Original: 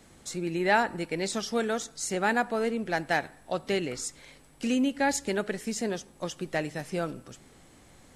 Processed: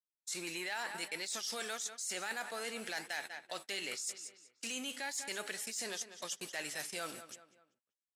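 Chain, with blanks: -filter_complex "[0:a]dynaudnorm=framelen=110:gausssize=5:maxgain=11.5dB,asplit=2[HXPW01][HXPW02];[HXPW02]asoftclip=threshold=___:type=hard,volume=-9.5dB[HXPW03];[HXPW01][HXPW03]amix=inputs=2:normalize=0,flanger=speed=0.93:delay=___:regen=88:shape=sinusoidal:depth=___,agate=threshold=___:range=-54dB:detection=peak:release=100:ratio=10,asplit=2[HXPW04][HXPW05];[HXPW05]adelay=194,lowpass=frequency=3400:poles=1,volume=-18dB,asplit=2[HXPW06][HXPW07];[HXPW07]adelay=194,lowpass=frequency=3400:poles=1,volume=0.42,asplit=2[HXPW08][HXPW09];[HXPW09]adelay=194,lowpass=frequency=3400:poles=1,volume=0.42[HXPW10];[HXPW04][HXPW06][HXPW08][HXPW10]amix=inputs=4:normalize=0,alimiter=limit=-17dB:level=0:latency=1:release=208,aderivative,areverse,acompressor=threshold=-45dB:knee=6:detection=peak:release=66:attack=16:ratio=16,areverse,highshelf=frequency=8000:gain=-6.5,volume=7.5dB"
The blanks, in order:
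-19.5dB, 4.6, 5.5, -34dB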